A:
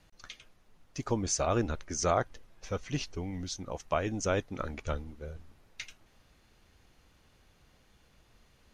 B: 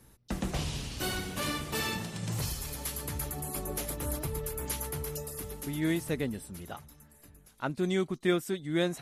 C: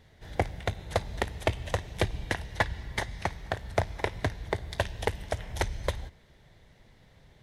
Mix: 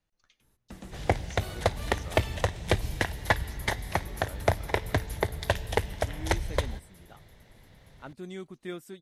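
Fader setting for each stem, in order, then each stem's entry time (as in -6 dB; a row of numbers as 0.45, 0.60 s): -19.0, -11.0, +2.5 dB; 0.00, 0.40, 0.70 s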